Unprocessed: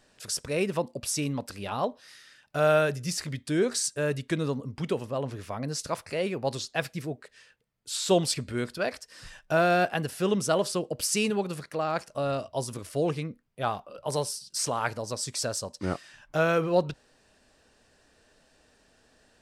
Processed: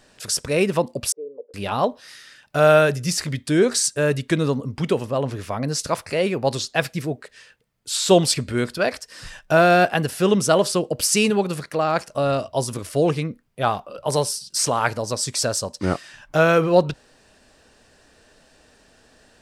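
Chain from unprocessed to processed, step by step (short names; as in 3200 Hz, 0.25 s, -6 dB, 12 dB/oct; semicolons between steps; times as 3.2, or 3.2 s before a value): 1.12–1.54 Butterworth band-pass 460 Hz, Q 4.7; gain +8 dB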